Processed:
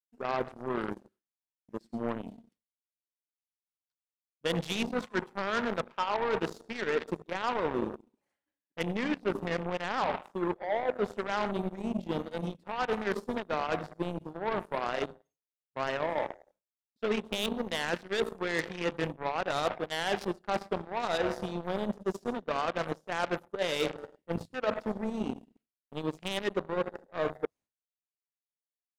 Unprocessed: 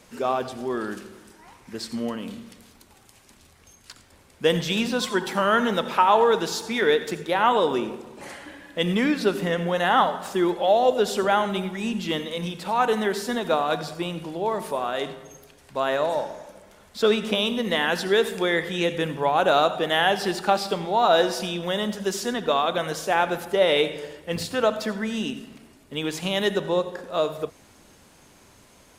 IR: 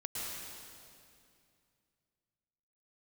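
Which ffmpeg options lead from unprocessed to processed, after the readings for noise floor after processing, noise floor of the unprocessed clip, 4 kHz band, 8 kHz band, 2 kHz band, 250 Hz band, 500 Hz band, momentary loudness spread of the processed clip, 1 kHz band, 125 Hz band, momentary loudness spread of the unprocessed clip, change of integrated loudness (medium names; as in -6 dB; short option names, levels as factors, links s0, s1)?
under -85 dBFS, -54 dBFS, -11.5 dB, -12.5 dB, -8.5 dB, -8.0 dB, -9.5 dB, 6 LU, -10.5 dB, -7.0 dB, 14 LU, -9.5 dB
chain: -af "afwtdn=0.0316,agate=range=0.0224:threshold=0.00398:ratio=3:detection=peak,areverse,acompressor=threshold=0.0447:ratio=8,areverse,aeval=exprs='0.133*(cos(1*acos(clip(val(0)/0.133,-1,1)))-cos(1*PI/2))+0.00211*(cos(5*acos(clip(val(0)/0.133,-1,1)))-cos(5*PI/2))+0.000841*(cos(6*acos(clip(val(0)/0.133,-1,1)))-cos(6*PI/2))+0.0188*(cos(7*acos(clip(val(0)/0.133,-1,1)))-cos(7*PI/2))+0.0015*(cos(8*acos(clip(val(0)/0.133,-1,1)))-cos(8*PI/2))':c=same"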